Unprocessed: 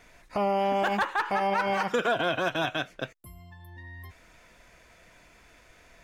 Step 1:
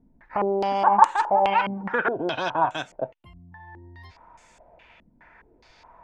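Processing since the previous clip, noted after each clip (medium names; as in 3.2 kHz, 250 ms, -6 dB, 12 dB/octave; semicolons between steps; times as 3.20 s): peaking EQ 890 Hz +13.5 dB 0.27 oct; step-sequenced low-pass 4.8 Hz 240–7700 Hz; trim -2 dB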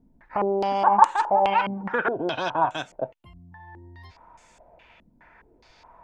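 peaking EQ 1.9 kHz -2 dB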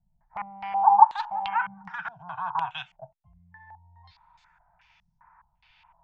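elliptic band-stop 170–810 Hz, stop band 40 dB; step-sequenced low-pass 2.7 Hz 580–5600 Hz; trim -8 dB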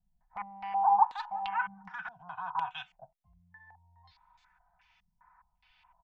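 comb 4 ms, depth 49%; trim -6.5 dB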